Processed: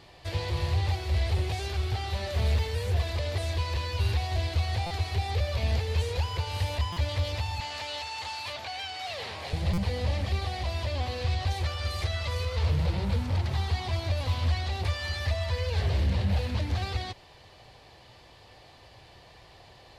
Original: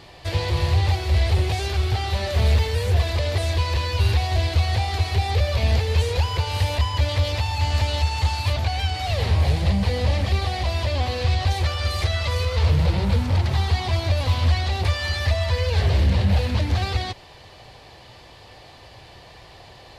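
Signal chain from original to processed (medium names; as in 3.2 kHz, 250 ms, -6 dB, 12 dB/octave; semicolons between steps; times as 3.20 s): 7.60–9.53 s: frequency weighting A; buffer glitch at 4.86/6.92/9.73 s, samples 256, times 7; trim -7.5 dB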